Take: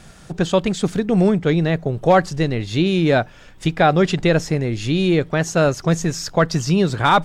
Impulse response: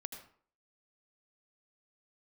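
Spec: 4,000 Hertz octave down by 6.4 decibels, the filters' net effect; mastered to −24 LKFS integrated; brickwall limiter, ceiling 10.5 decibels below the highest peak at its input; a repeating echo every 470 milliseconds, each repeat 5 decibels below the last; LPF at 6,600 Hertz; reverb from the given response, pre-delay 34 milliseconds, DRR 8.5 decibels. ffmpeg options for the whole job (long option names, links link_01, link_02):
-filter_complex "[0:a]lowpass=6600,equalizer=frequency=4000:width_type=o:gain=-7.5,alimiter=limit=-16dB:level=0:latency=1,aecho=1:1:470|940|1410|1880|2350|2820|3290:0.562|0.315|0.176|0.0988|0.0553|0.031|0.0173,asplit=2[link_01][link_02];[1:a]atrim=start_sample=2205,adelay=34[link_03];[link_02][link_03]afir=irnorm=-1:irlink=0,volume=-6dB[link_04];[link_01][link_04]amix=inputs=2:normalize=0"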